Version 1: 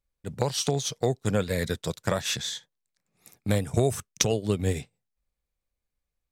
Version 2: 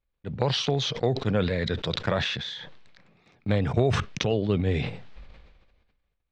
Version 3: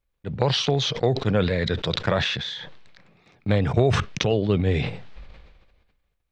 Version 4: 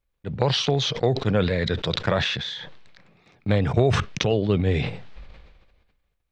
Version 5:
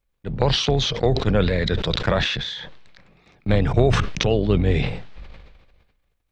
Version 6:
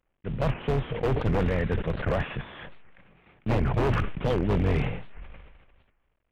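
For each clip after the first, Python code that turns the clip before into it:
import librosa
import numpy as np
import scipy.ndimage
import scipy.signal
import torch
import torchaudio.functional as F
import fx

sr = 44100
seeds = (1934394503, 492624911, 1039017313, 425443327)

y1 = scipy.signal.sosfilt(scipy.signal.butter(4, 3800.0, 'lowpass', fs=sr, output='sos'), x)
y1 = fx.sustainer(y1, sr, db_per_s=38.0)
y2 = fx.peak_eq(y1, sr, hz=240.0, db=-2.5, octaves=0.32)
y2 = y2 * librosa.db_to_amplitude(3.5)
y3 = y2
y4 = fx.octave_divider(y3, sr, octaves=2, level_db=-4.0)
y4 = fx.sustainer(y4, sr, db_per_s=70.0)
y4 = y4 * librosa.db_to_amplitude(1.5)
y5 = fx.cvsd(y4, sr, bps=16000)
y5 = 10.0 ** (-14.5 / 20.0) * (np.abs((y5 / 10.0 ** (-14.5 / 20.0) + 3.0) % 4.0 - 2.0) - 1.0)
y5 = fx.record_warp(y5, sr, rpm=78.0, depth_cents=250.0)
y5 = y5 * librosa.db_to_amplitude(-3.0)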